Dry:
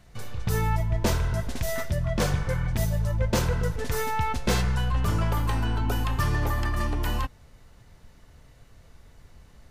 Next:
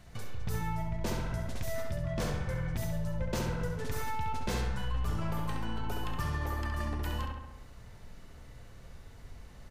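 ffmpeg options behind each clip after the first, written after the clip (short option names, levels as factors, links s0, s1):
-filter_complex "[0:a]asplit=2[s0][s1];[s1]adelay=67,lowpass=f=3300:p=1,volume=0.708,asplit=2[s2][s3];[s3]adelay=67,lowpass=f=3300:p=1,volume=0.53,asplit=2[s4][s5];[s5]adelay=67,lowpass=f=3300:p=1,volume=0.53,asplit=2[s6][s7];[s7]adelay=67,lowpass=f=3300:p=1,volume=0.53,asplit=2[s8][s9];[s9]adelay=67,lowpass=f=3300:p=1,volume=0.53,asplit=2[s10][s11];[s11]adelay=67,lowpass=f=3300:p=1,volume=0.53,asplit=2[s12][s13];[s13]adelay=67,lowpass=f=3300:p=1,volume=0.53[s14];[s0][s2][s4][s6][s8][s10][s12][s14]amix=inputs=8:normalize=0,acompressor=threshold=0.0126:ratio=2"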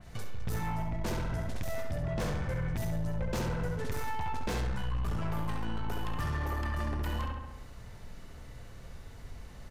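-filter_complex "[0:a]asplit=2[s0][s1];[s1]aeval=exprs='0.106*sin(PI/2*2.82*val(0)/0.106)':c=same,volume=0.631[s2];[s0][s2]amix=inputs=2:normalize=0,adynamicequalizer=threshold=0.00794:dfrequency=2900:dqfactor=0.7:tfrequency=2900:tqfactor=0.7:attack=5:release=100:ratio=0.375:range=1.5:mode=cutabove:tftype=highshelf,volume=0.376"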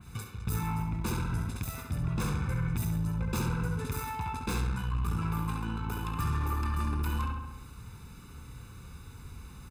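-af "highpass=53,aecho=1:1:0.8:0.88,aexciter=amount=1.5:drive=7.3:freq=8100,volume=0.891"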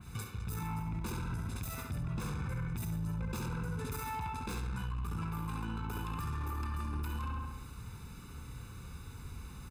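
-af "alimiter=level_in=2:limit=0.0631:level=0:latency=1:release=39,volume=0.501"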